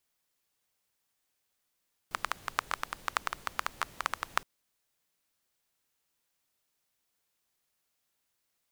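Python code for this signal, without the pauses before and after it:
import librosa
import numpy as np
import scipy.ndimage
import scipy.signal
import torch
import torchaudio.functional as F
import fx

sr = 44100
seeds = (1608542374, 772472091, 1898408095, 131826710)

y = fx.rain(sr, seeds[0], length_s=2.32, drops_per_s=10.0, hz=1200.0, bed_db=-16)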